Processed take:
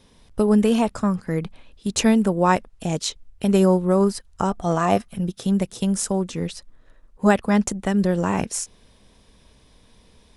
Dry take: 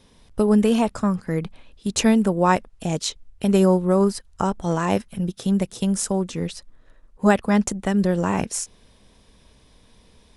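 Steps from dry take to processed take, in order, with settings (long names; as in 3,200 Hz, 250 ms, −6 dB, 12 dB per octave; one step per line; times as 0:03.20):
0:04.50–0:05.13: hollow resonant body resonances 710/1,200 Hz, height 11 dB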